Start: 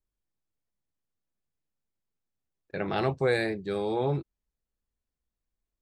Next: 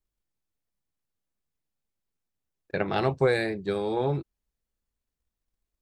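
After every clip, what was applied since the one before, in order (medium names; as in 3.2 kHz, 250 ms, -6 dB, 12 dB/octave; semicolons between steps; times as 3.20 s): transient shaper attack +7 dB, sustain +2 dB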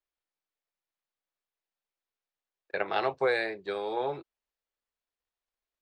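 three-band isolator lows -20 dB, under 420 Hz, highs -14 dB, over 5 kHz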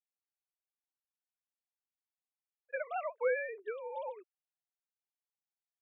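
formants replaced by sine waves; trim -6.5 dB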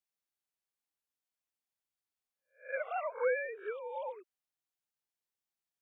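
reverse spectral sustain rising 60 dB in 0.31 s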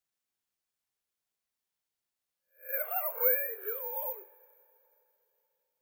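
careless resampling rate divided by 3×, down none, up zero stuff; on a send at -8.5 dB: reverberation, pre-delay 3 ms; on the sum: trim -2 dB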